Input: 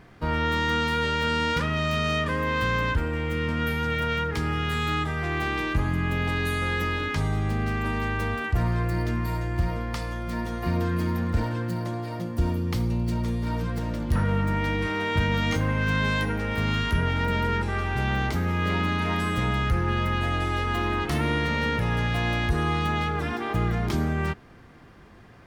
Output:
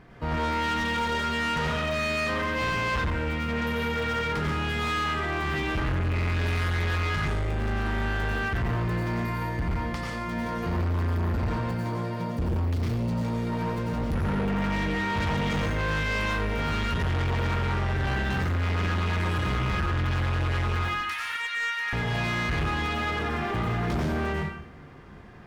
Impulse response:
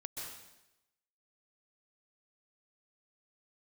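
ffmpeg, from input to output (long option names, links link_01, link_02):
-filter_complex "[0:a]asettb=1/sr,asplit=3[link_01][link_02][link_03];[link_01]atrim=end=20.764[link_04];[link_02]atrim=start=20.76:end=21.93,asetpts=PTS-STARTPTS,afade=type=in:duration=0.004:curve=qsin,afade=type=out:start_time=1.166:duration=0.004:curve=qsin,highpass=frequency=1300:width=0.5412,highpass=frequency=1300:width=1.3066[link_05];[link_03]atrim=start=21.926[link_06];[link_04][link_05]acrossfade=duration=0.004:curve1=hsin:curve2=qsin[link_07];[link_07][link_06]acrossfade=duration=0.004:curve1=qsin:curve2=hsin[link_08];[1:a]atrim=start_sample=2205,asetrate=61740,aresample=44100[link_09];[link_08][link_09]afir=irnorm=-1:irlink=0,volume=31dB,asoftclip=hard,volume=-31dB,highshelf=frequency=5000:gain=-7.5,volume=7dB"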